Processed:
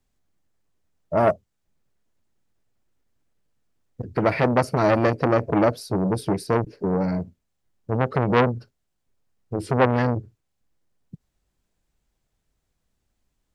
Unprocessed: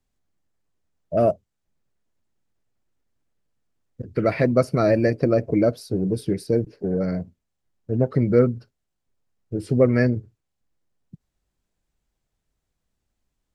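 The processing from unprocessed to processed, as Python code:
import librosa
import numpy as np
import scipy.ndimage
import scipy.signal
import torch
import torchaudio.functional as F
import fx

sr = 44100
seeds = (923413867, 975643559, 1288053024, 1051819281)

y = fx.transformer_sat(x, sr, knee_hz=1300.0)
y = y * 10.0 ** (3.0 / 20.0)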